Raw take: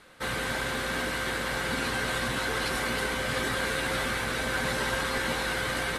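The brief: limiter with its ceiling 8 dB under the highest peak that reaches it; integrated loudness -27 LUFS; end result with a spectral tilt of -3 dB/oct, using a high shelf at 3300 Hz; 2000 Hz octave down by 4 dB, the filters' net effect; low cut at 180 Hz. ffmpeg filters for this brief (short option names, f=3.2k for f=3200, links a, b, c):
-af "highpass=180,equalizer=f=2k:t=o:g=-6.5,highshelf=f=3.3k:g=3.5,volume=6.5dB,alimiter=limit=-18.5dB:level=0:latency=1"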